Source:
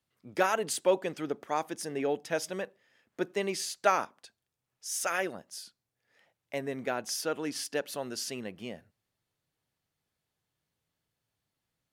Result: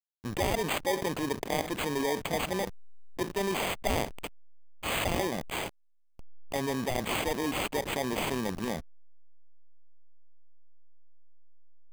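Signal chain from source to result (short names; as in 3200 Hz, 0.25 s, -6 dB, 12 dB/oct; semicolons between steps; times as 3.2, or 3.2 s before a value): FFT order left unsorted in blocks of 32 samples; backlash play -46.5 dBFS; careless resampling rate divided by 8×, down none, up hold; fast leveller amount 70%; gain -6 dB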